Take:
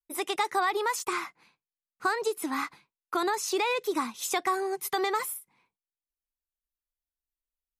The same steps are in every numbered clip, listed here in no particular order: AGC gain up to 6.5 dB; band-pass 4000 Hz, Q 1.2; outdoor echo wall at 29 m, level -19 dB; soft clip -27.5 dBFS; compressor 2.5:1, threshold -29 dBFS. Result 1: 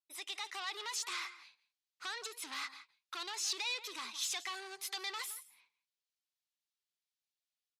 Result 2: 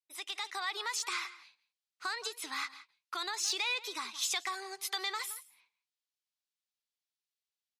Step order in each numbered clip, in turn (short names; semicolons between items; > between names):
compressor > AGC > outdoor echo > soft clip > band-pass; outdoor echo > compressor > band-pass > soft clip > AGC